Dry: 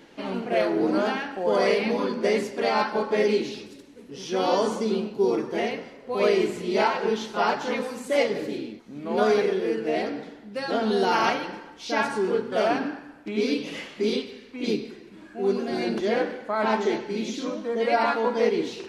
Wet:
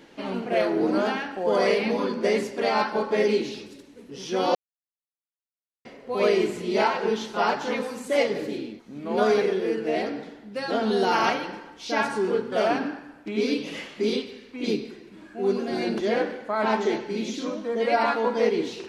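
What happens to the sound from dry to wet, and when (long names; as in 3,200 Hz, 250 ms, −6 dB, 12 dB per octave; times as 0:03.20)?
0:04.55–0:05.85: silence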